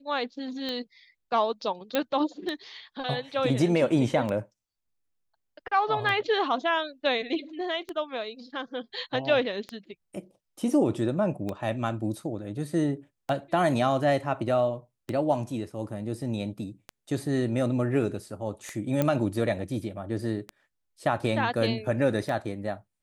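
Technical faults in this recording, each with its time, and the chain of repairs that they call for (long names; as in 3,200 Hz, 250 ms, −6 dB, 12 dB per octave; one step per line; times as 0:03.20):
scratch tick 33 1/3 rpm −19 dBFS
0:01.95: click −12 dBFS
0:19.02: click −12 dBFS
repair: click removal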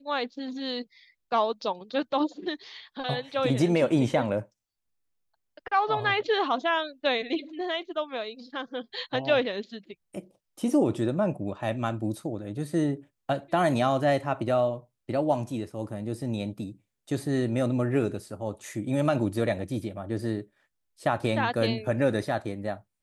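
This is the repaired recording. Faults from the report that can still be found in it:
none of them is left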